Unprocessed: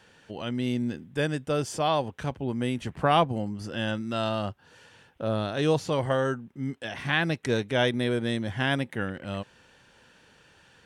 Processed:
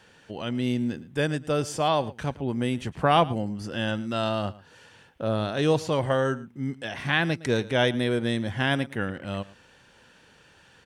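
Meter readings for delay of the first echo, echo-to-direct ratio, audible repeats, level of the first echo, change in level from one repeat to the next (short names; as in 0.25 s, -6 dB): 0.112 s, -19.5 dB, 1, -19.5 dB, no steady repeat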